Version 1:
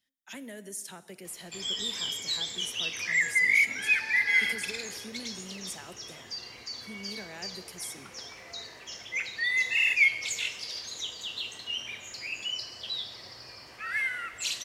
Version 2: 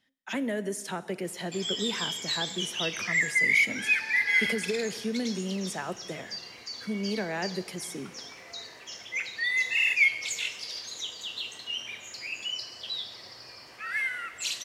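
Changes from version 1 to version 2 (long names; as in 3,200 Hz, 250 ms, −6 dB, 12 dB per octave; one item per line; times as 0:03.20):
speech: remove first-order pre-emphasis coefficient 0.8
master: add low-shelf EQ 81 Hz −11 dB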